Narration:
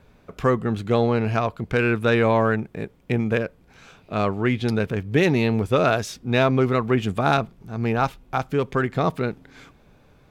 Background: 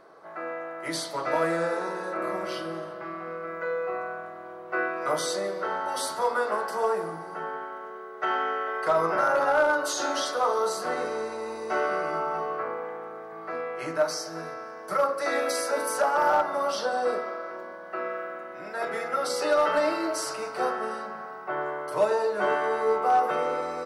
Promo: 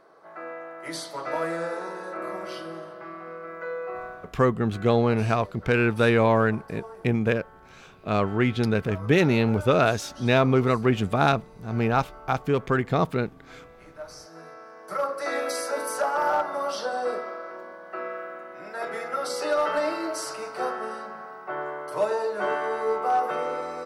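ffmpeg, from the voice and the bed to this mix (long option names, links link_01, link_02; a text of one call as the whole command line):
ffmpeg -i stem1.wav -i stem2.wav -filter_complex "[0:a]adelay=3950,volume=-1dB[link_01];[1:a]volume=12.5dB,afade=type=out:start_time=4.05:duration=0.34:silence=0.199526,afade=type=in:start_time=13.96:duration=1.33:silence=0.16788[link_02];[link_01][link_02]amix=inputs=2:normalize=0" out.wav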